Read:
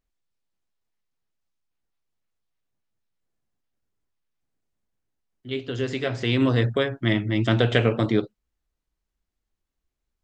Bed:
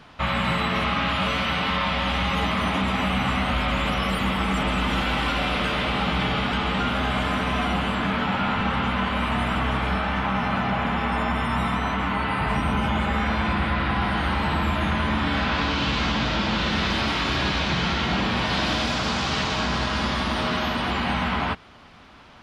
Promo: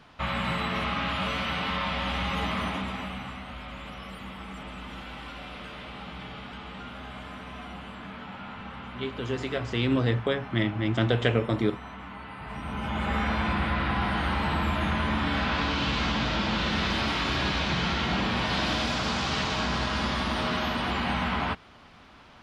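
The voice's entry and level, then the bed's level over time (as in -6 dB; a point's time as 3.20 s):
3.50 s, -4.0 dB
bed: 2.59 s -5.5 dB
3.42 s -16.5 dB
12.39 s -16.5 dB
13.13 s -3.5 dB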